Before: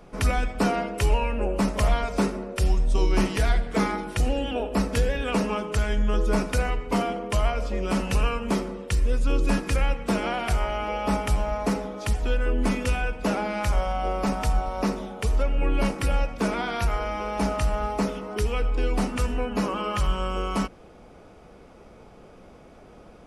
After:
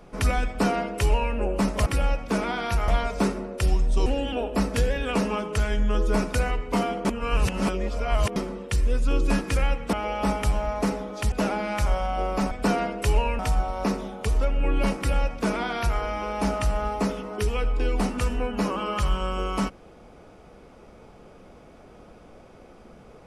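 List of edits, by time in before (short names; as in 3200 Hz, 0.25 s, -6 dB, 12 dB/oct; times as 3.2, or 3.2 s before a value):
0.47–1.35 copy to 14.37
3.04–4.25 cut
7.24–8.55 reverse
10.12–10.77 cut
12.16–13.18 cut
15.96–16.98 copy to 1.86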